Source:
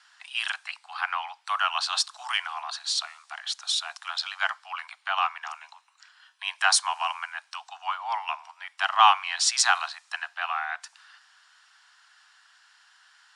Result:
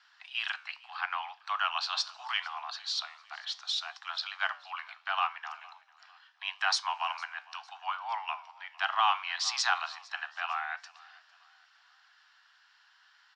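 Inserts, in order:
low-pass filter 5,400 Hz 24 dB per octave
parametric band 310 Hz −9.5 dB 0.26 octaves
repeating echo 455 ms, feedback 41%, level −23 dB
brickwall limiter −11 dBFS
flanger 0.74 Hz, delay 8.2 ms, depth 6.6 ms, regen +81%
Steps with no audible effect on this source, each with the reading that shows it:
parametric band 310 Hz: nothing at its input below 570 Hz

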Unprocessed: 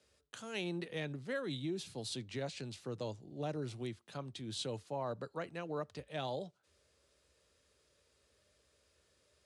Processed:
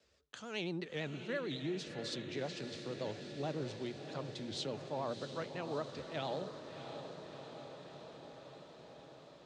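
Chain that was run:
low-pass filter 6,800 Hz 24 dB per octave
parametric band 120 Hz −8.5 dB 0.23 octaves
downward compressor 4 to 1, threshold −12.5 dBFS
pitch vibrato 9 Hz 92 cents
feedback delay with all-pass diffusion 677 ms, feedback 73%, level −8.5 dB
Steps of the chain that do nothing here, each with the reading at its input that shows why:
downward compressor, threshold −12.5 dBFS: peak of its input −27.0 dBFS

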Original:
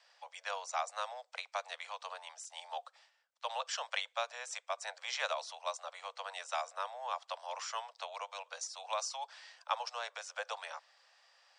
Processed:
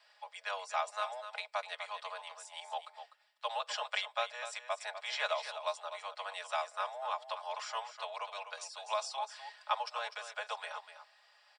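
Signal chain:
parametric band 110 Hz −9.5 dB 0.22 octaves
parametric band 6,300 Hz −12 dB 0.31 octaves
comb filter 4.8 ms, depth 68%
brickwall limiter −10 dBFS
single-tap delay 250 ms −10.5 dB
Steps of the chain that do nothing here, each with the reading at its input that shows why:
parametric band 110 Hz: nothing at its input below 430 Hz
brickwall limiter −10 dBFS: peak of its input −17.5 dBFS

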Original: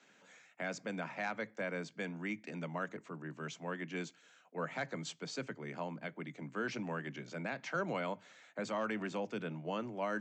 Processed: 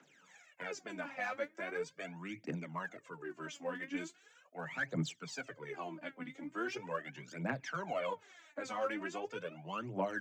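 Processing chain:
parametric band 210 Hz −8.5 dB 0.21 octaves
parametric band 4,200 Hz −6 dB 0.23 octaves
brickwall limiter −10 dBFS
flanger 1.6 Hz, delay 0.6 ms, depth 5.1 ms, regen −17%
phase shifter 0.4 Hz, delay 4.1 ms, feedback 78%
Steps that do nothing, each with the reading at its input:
brickwall limiter −10 dBFS: peak of its input −24.0 dBFS

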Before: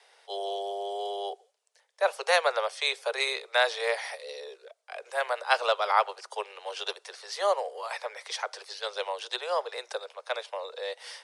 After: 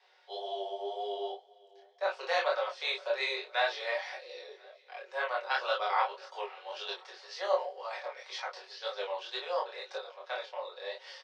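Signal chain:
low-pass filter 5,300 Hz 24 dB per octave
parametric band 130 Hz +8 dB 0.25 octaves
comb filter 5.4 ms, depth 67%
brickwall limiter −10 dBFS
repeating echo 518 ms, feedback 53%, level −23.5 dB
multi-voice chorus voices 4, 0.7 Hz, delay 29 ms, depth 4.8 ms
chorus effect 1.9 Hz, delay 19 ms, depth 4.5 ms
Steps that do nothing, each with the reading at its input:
parametric band 130 Hz: nothing at its input below 340 Hz

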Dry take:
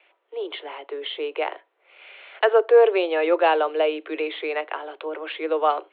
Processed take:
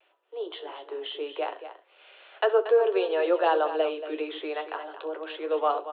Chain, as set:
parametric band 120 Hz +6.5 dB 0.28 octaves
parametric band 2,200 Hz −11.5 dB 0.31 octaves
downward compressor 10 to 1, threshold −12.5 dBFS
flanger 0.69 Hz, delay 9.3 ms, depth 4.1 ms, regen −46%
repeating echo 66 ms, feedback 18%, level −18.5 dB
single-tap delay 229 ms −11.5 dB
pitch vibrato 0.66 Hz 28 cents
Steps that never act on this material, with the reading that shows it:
parametric band 120 Hz: nothing at its input below 300 Hz

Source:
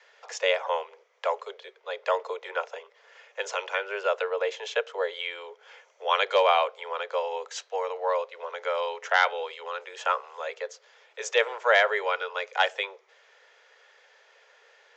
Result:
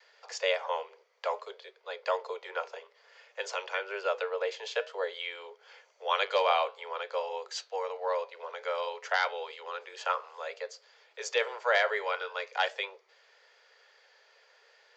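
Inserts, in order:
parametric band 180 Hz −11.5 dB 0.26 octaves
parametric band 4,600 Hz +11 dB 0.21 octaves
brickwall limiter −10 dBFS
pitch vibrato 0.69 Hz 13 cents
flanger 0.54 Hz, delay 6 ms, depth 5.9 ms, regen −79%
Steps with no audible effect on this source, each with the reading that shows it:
parametric band 180 Hz: nothing at its input below 360 Hz

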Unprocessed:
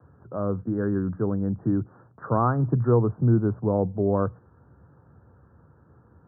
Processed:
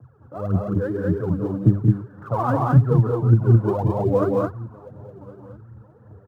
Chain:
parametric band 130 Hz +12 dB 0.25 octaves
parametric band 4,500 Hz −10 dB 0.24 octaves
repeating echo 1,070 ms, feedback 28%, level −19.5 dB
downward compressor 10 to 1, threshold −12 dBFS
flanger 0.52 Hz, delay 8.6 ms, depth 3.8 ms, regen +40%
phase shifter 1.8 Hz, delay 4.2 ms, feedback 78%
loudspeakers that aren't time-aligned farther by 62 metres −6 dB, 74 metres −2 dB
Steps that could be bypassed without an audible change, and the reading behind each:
parametric band 4,500 Hz: nothing at its input above 720 Hz

